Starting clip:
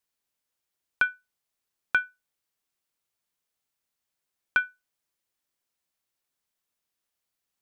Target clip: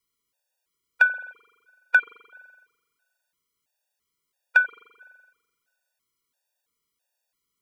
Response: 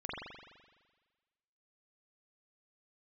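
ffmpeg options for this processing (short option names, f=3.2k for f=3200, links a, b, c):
-filter_complex "[0:a]asplit=2[a][b];[b]highpass=f=460:t=q:w=4.9[c];[1:a]atrim=start_sample=2205[d];[c][d]afir=irnorm=-1:irlink=0,volume=-17dB[e];[a][e]amix=inputs=2:normalize=0,afftfilt=real='re*gt(sin(2*PI*1.5*pts/sr)*(1-2*mod(floor(b*sr/1024/480),2)),0)':imag='im*gt(sin(2*PI*1.5*pts/sr)*(1-2*mod(floor(b*sr/1024/480),2)),0)':win_size=1024:overlap=0.75,volume=6dB"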